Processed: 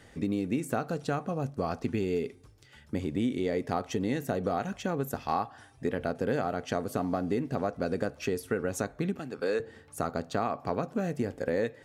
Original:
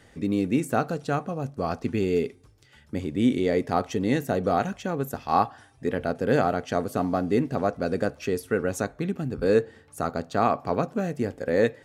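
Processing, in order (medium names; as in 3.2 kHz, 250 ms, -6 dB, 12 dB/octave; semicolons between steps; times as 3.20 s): 9.19–9.60 s: frequency weighting A; compression 5:1, threshold -26 dBFS, peak gain reduction 10 dB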